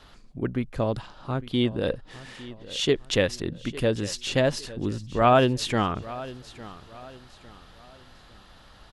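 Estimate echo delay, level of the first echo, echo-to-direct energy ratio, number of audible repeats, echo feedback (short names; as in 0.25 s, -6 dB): 0.855 s, -17.5 dB, -17.0 dB, 2, 36%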